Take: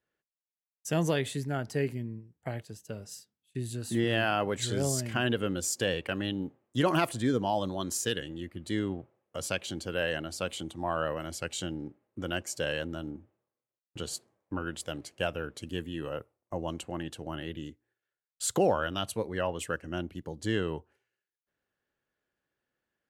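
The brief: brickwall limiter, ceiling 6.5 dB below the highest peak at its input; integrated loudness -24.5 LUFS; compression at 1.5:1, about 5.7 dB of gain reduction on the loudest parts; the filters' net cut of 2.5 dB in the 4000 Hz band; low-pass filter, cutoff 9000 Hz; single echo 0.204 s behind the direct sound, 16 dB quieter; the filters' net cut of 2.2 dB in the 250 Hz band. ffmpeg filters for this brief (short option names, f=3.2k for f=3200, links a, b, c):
-af "lowpass=9k,equalizer=f=250:t=o:g=-3,equalizer=f=4k:t=o:g=-3.5,acompressor=threshold=-37dB:ratio=1.5,alimiter=level_in=1.5dB:limit=-24dB:level=0:latency=1,volume=-1.5dB,aecho=1:1:204:0.158,volume=14.5dB"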